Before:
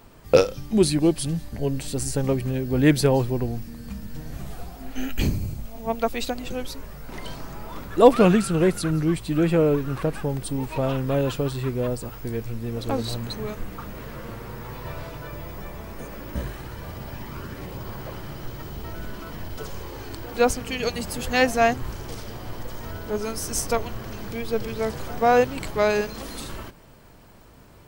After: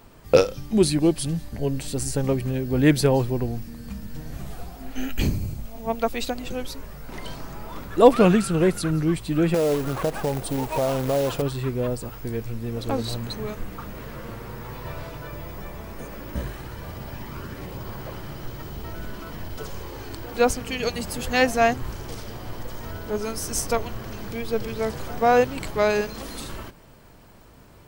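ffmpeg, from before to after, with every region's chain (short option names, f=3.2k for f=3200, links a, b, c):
-filter_complex "[0:a]asettb=1/sr,asplit=3[a][b][c];[a]atrim=end=9.544[d];[b]atrim=start=9.54:end=11.42,asetpts=PTS-STARTPTS,afade=t=in:d=0.004:c=qsin,afade=t=out:st=1.876:d=0.004:c=qsin,equalizer=f=670:w=0.98:g=10.5,acompressor=threshold=-21dB:ratio=3:attack=3.2:release=140:knee=1:detection=peak,acrusher=bits=3:mode=log:mix=0:aa=0.000001[e];[c]atrim=start=11.416[f];[d][e]acrossfade=d=0.004:c1=hsin:c2=qsin[g];[g][f]acrossfade=d=0.004:c1=qsin:c2=hsin"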